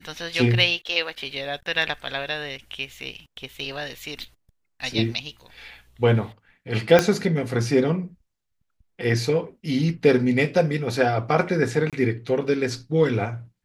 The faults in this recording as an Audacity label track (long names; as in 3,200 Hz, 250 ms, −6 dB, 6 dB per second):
6.990000	6.990000	click −3 dBFS
11.900000	11.930000	drop-out 27 ms